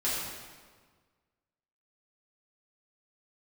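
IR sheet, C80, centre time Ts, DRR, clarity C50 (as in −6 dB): 1.5 dB, 97 ms, −10.0 dB, −1.0 dB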